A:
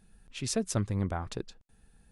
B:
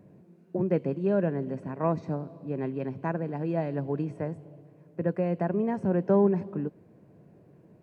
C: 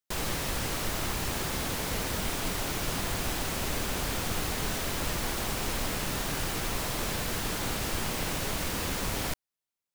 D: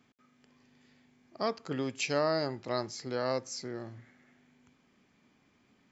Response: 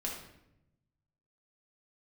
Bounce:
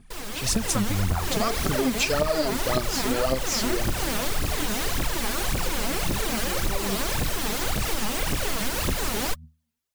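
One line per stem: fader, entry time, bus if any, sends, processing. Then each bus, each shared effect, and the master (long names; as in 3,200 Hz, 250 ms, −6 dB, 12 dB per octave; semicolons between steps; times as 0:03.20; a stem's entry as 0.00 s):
+0.5 dB, 0.00 s, no send, parametric band 430 Hz −8 dB 1.4 octaves
−17.0 dB, 0.60 s, no send, chorus effect 2.6 Hz, delay 18 ms, depth 2.5 ms
−8.0 dB, 0.00 s, no send, hum removal 79.04 Hz, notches 3
+1.0 dB, 0.00 s, no send, soft clipping −24.5 dBFS, distortion −13 dB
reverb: not used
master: automatic gain control gain up to 10.5 dB; phase shifter 1.8 Hz, delay 5 ms, feedback 71%; downward compressor 6 to 1, threshold −20 dBFS, peak gain reduction 9.5 dB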